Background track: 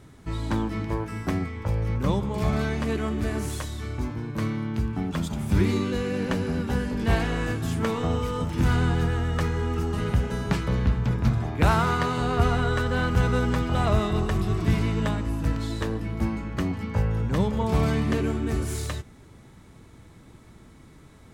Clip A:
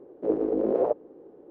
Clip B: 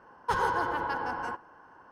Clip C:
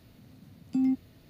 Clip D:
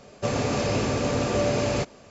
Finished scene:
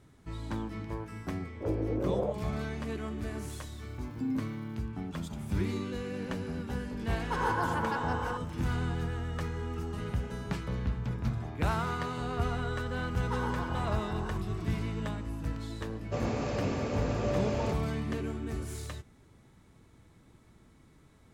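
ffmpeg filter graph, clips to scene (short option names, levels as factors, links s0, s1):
-filter_complex "[2:a]asplit=2[s0][s1];[0:a]volume=0.335[s2];[1:a]asplit=2[s3][s4];[s4]adelay=22,volume=0.668[s5];[s3][s5]amix=inputs=2:normalize=0[s6];[3:a]aeval=exprs='val(0)*gte(abs(val(0)),0.00237)':c=same[s7];[s0]dynaudnorm=f=230:g=3:m=3.16[s8];[4:a]highshelf=f=3300:g=-9[s9];[s6]atrim=end=1.5,asetpts=PTS-STARTPTS,volume=0.335,afade=t=in:d=0.004:c=hsin,afade=t=out:st=1.496:d=0.004:c=hsin,adelay=1380[s10];[s7]atrim=end=1.29,asetpts=PTS-STARTPTS,volume=0.447,afade=t=in:d=0.004:c=hsin,afade=t=out:st=1.286:d=0.004:c=hsin,adelay=3460[s11];[s8]atrim=end=1.91,asetpts=PTS-STARTPTS,volume=0.266,afade=t=in:d=0.004:c=hsin,afade=t=out:st=1.906:d=0.004:c=hsin,adelay=7020[s12];[s1]atrim=end=1.91,asetpts=PTS-STARTPTS,volume=0.316,afade=t=in:d=0.004:c=hsin,afade=t=out:st=1.906:d=0.004:c=hsin,adelay=13020[s13];[s9]atrim=end=2.1,asetpts=PTS-STARTPTS,volume=0.422,afade=t=in:d=0.004:c=hsin,afade=t=out:st=2.096:d=0.004:c=hsin,adelay=15890[s14];[s2][s10][s11][s12][s13][s14]amix=inputs=6:normalize=0"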